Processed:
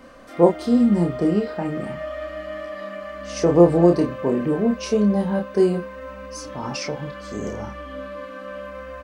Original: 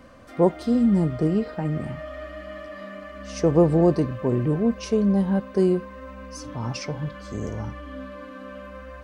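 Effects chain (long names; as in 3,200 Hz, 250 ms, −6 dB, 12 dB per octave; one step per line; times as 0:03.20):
parametric band 93 Hz −15 dB 1.1 octaves
double-tracking delay 29 ms −4 dB
level +3 dB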